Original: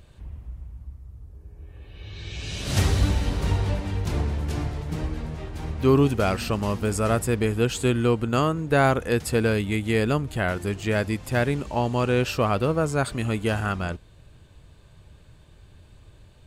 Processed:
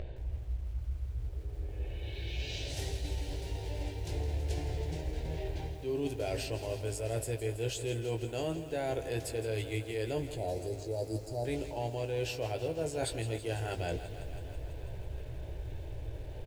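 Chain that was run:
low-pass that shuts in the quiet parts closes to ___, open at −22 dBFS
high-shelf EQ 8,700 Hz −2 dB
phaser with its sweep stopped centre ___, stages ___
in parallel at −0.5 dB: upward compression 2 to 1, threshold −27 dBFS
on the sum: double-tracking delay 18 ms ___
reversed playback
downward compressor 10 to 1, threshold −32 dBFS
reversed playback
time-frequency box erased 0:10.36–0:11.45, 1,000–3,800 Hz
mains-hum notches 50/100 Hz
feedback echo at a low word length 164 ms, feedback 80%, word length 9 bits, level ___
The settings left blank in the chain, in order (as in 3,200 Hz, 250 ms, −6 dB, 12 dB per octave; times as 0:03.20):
1,600 Hz, 500 Hz, 4, −7.5 dB, −12.5 dB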